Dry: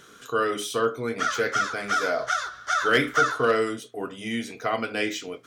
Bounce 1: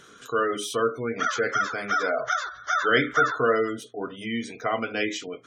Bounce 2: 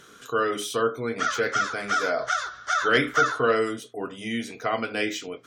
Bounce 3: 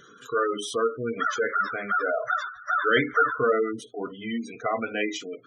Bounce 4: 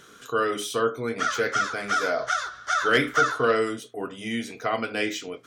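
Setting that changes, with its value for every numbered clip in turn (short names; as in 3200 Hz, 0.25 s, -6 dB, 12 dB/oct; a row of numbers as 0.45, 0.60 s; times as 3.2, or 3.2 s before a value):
spectral gate, under each frame's peak: -25, -40, -15, -50 dB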